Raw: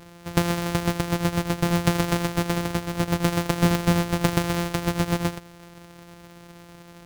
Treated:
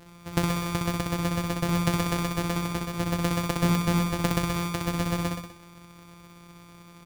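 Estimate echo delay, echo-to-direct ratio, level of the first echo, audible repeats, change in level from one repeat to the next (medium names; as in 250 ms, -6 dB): 63 ms, -2.5 dB, -4.0 dB, 4, -5.0 dB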